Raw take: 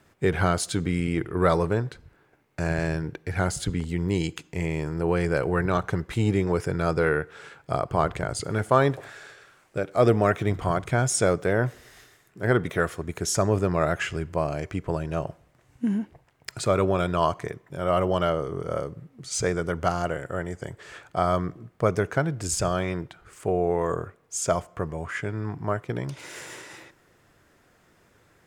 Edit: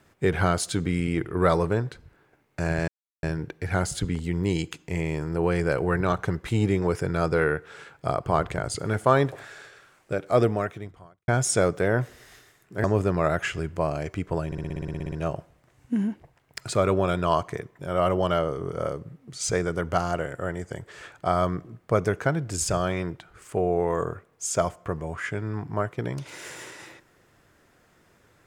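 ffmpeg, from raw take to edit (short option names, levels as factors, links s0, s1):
-filter_complex "[0:a]asplit=15[s0][s1][s2][s3][s4][s5][s6][s7][s8][s9][s10][s11][s12][s13][s14];[s0]atrim=end=2.88,asetpts=PTS-STARTPTS,afade=t=out:st=2.876:d=0.004:c=hsin,apad=pad_dur=0.35[s15];[s1]atrim=start=2.88:end=10.93,asetpts=PTS-STARTPTS,afade=t=in:d=0.004:c=hsin,afade=t=out:st=7.1:d=0.95:c=qua[s16];[s2]atrim=start=10.93:end=12.492,asetpts=PTS-STARTPTS,afade=t=in:d=0.004:c=hsin[s17];[s3]atrim=start=13.408:end=15.092[s18];[s4]atrim=start=15.028:end=15.092[s19];[s5]atrim=start=15.028:end=15.092[s20];[s6]atrim=start=15.028:end=15.092[s21];[s7]atrim=start=15.028:end=15.092[s22];[s8]atrim=start=15.028:end=15.092[s23];[s9]atrim=start=15.028:end=15.092[s24];[s10]atrim=start=15.028:end=15.092[s25];[s11]atrim=start=15.028:end=15.092[s26];[s12]atrim=start=15.028:end=15.092[s27];[s13]atrim=start=15.028:end=15.092[s28];[s14]atrim=start=15.028[s29];[s15][s16][s17]concat=n=3:v=0:a=1[s30];[s30][s18]acrossfade=d=0.004:c1=hsin:c2=hsin[s31];[s31][s19]acrossfade=d=0.004:c1=hsin:c2=hsin[s32];[s32][s20]acrossfade=d=0.004:c1=hsin:c2=hsin[s33];[s33][s21]acrossfade=d=0.004:c1=hsin:c2=hsin[s34];[s34][s22]acrossfade=d=0.004:c1=hsin:c2=hsin[s35];[s35][s23]acrossfade=d=0.004:c1=hsin:c2=hsin[s36];[s36][s24]acrossfade=d=0.004:c1=hsin:c2=hsin[s37];[s37][s25]acrossfade=d=0.004:c1=hsin:c2=hsin[s38];[s38][s26]acrossfade=d=0.004:c1=hsin:c2=hsin[s39];[s39][s27]acrossfade=d=0.004:c1=hsin:c2=hsin[s40];[s40][s28]acrossfade=d=0.004:c1=hsin:c2=hsin[s41];[s41][s29]acrossfade=d=0.004:c1=hsin:c2=hsin"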